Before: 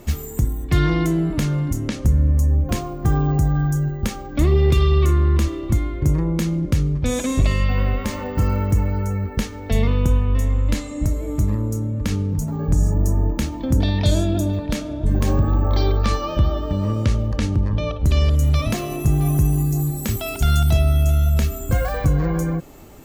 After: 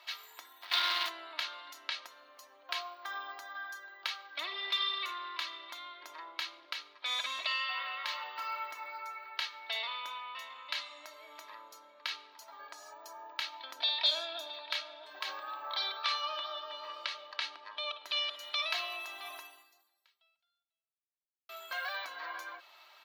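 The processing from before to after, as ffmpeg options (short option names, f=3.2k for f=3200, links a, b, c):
-filter_complex "[0:a]asplit=3[a][b][c];[a]afade=t=out:st=0.61:d=0.02[d];[b]acrusher=bits=2:mode=log:mix=0:aa=0.000001,afade=t=in:st=0.61:d=0.02,afade=t=out:st=1.08:d=0.02[e];[c]afade=t=in:st=1.08:d=0.02[f];[d][e][f]amix=inputs=3:normalize=0,asettb=1/sr,asplit=3[g][h][i];[g]atrim=end=8.774[j];[h]atrim=start=8.77:end=9.17,asetpts=PTS-STARTPTS,afade=t=in:d=0.004:c=qsin,afade=t=out:st=0.396:d=0.004:c=qsin,bandreject=f=3k:w=8.1[k];[i]atrim=start=9.166[l];[j][k]acrossfade=d=0.004:c1=hsin:c2=qsin[m];[m][l]acrossfade=d=0.004:c1=qsin:c2=hsin,asplit=2[n][o];[n]atrim=end=21.49,asetpts=PTS-STARTPTS,afade=t=out:st=19.39:d=2.1:c=exp[p];[o]atrim=start=21.49,asetpts=PTS-STARTPTS,afade=t=in:d=0.004:c=hsin[q];[p][q]concat=n=2:v=0:a=1,highpass=f=900:w=0.5412,highpass=f=900:w=1.3066,highshelf=f=5.6k:t=q:w=3:g=-12,aecho=1:1:3.1:0.57,volume=-6.5dB"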